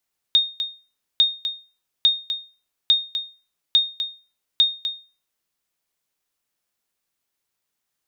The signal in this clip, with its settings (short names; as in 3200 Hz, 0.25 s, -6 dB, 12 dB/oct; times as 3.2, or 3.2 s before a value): sonar ping 3690 Hz, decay 0.34 s, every 0.85 s, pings 6, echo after 0.25 s, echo -9.5 dB -8.5 dBFS